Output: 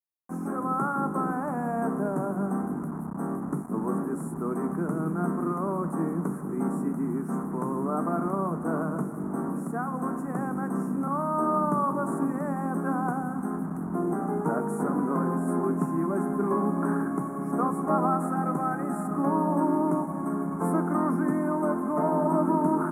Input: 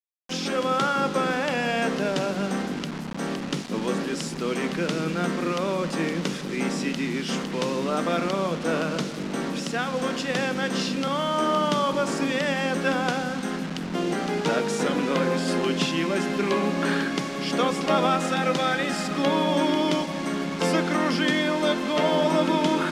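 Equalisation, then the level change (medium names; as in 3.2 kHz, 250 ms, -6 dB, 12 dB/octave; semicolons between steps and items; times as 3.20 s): high-pass 53 Hz; Chebyshev band-stop 1.2–9.9 kHz, order 3; peaking EQ 520 Hz -13.5 dB 0.25 oct; 0.0 dB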